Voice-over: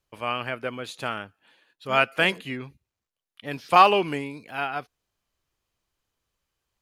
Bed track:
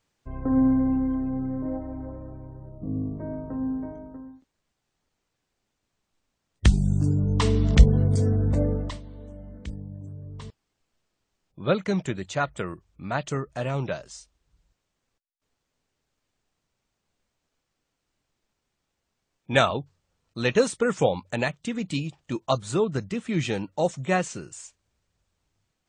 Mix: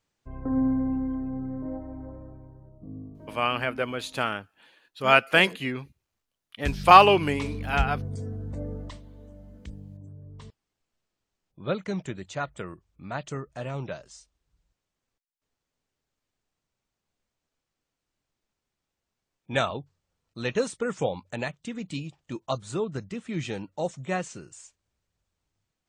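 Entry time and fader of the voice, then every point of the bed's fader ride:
3.15 s, +2.5 dB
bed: 2.21 s -4 dB
3.11 s -12.5 dB
8.52 s -12.5 dB
9.01 s -5.5 dB

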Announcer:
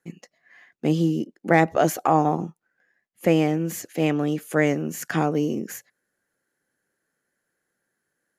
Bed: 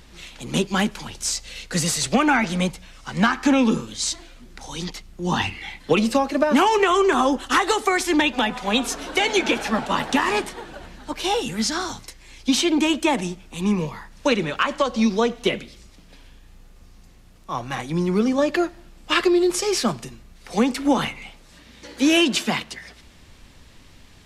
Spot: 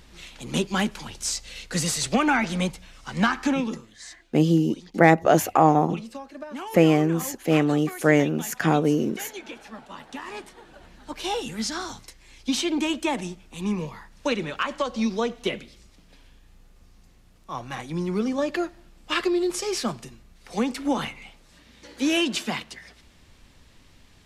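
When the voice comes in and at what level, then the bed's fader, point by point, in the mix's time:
3.50 s, +2.0 dB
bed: 3.4 s -3 dB
3.97 s -18.5 dB
10.03 s -18.5 dB
11.16 s -5.5 dB

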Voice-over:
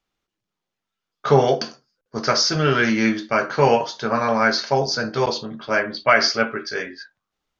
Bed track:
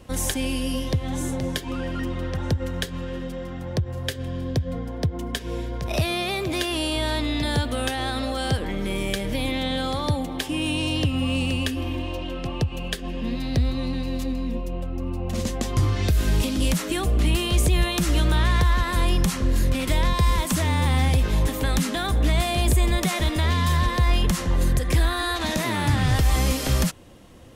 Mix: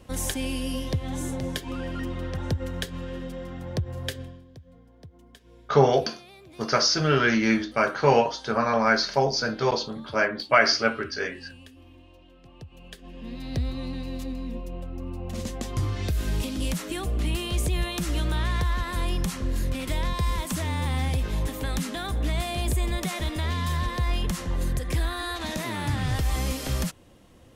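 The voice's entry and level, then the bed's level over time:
4.45 s, -3.0 dB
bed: 4.17 s -3.5 dB
4.47 s -23 dB
12.4 s -23 dB
13.57 s -6 dB

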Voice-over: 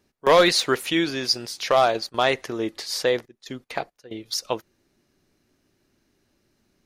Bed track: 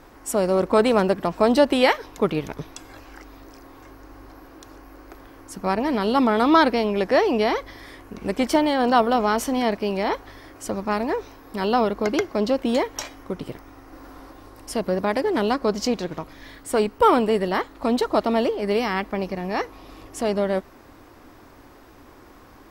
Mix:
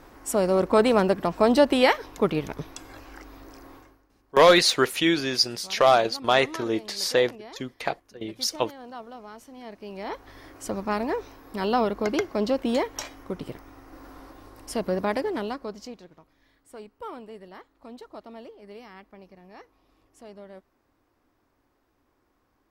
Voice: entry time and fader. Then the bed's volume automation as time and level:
4.10 s, +0.5 dB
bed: 3.75 s -1.5 dB
4.08 s -22.5 dB
9.52 s -22.5 dB
10.41 s -3 dB
15.13 s -3 dB
16.15 s -22 dB

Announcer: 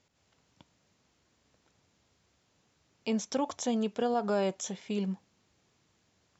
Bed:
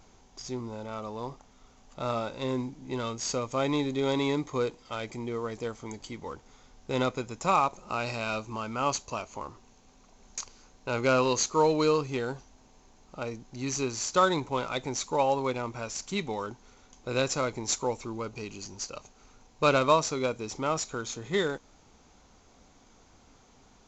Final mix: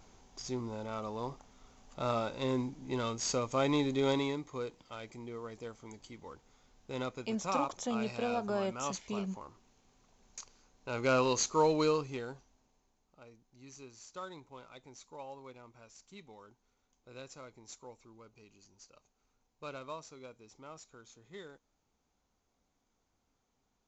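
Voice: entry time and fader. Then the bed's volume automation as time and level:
4.20 s, -5.0 dB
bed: 4.11 s -2 dB
4.4 s -10 dB
10.73 s -10 dB
11.14 s -4 dB
11.82 s -4 dB
13.14 s -21 dB

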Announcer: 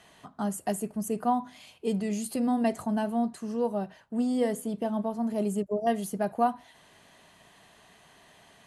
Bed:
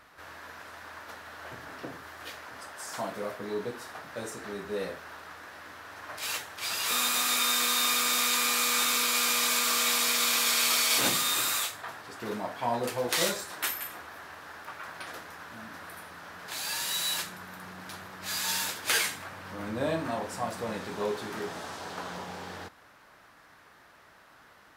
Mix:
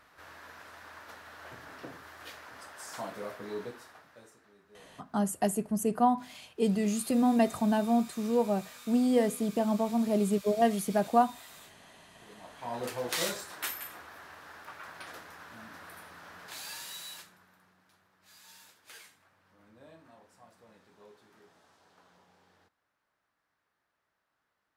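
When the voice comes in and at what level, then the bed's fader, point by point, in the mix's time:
4.75 s, +1.5 dB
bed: 3.62 s -4.5 dB
4.51 s -24.5 dB
12.19 s -24.5 dB
12.83 s -4.5 dB
16.39 s -4.5 dB
17.9 s -25 dB

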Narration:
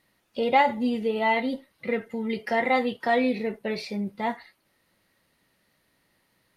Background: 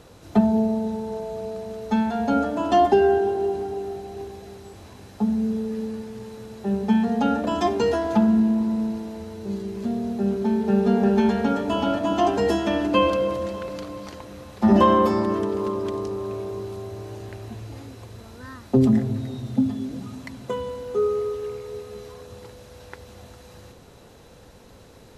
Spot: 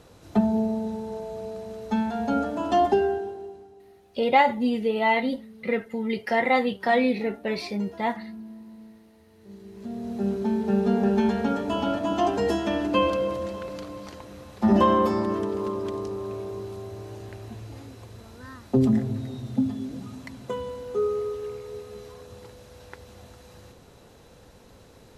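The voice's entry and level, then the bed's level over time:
3.80 s, +1.5 dB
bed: 2.93 s -3.5 dB
3.76 s -21.5 dB
9.24 s -21.5 dB
10.2 s -3 dB

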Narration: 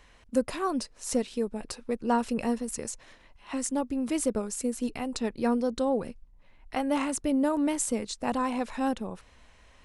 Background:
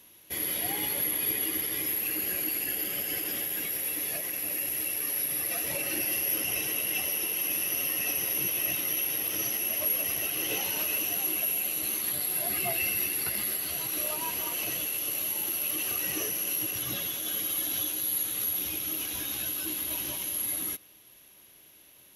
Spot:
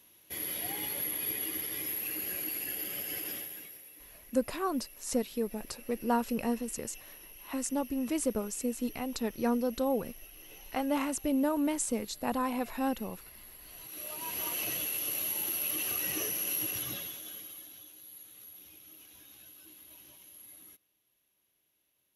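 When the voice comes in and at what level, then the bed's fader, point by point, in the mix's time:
4.00 s, -3.0 dB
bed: 3.31 s -5.5 dB
3.89 s -21.5 dB
13.52 s -21.5 dB
14.44 s -2.5 dB
16.76 s -2.5 dB
17.8 s -21 dB

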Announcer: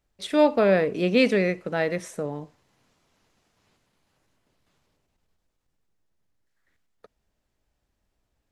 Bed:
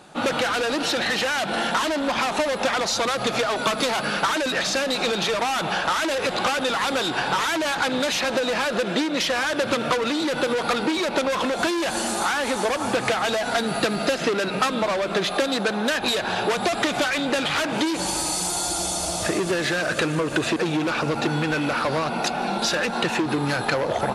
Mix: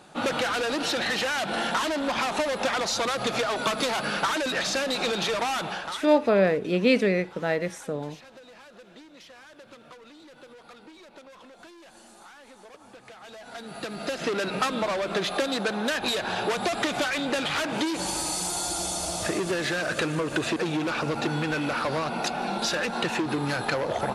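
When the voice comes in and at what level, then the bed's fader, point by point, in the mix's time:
5.70 s, -1.0 dB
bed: 5.54 s -3.5 dB
6.46 s -26 dB
13.04 s -26 dB
14.36 s -4 dB

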